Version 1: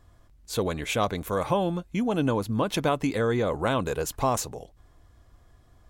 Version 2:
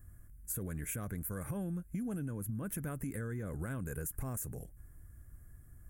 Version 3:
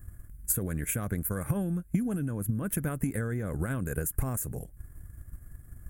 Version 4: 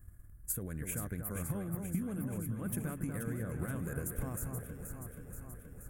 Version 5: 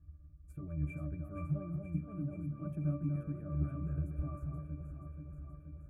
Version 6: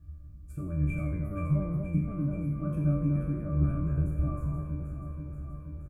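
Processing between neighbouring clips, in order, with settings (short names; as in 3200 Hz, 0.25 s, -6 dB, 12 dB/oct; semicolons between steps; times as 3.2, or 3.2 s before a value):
EQ curve 160 Hz 0 dB, 950 Hz -21 dB, 1600 Hz -4 dB, 4000 Hz -29 dB, 10000 Hz +9 dB; limiter -26 dBFS, peak gain reduction 9.5 dB; compressor, threshold -38 dBFS, peak gain reduction 8.5 dB; gain +2.5 dB
bell 5800 Hz -3 dB 0.36 oct; transient shaper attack +6 dB, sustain -5 dB; gain +7 dB
echo with dull and thin repeats by turns 0.239 s, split 1800 Hz, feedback 81%, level -5 dB; gain -8.5 dB
octave resonator D, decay 0.24 s; gain +10.5 dB
spectral trails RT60 0.56 s; frequency-shifting echo 82 ms, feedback 51%, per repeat -94 Hz, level -13 dB; gain +7 dB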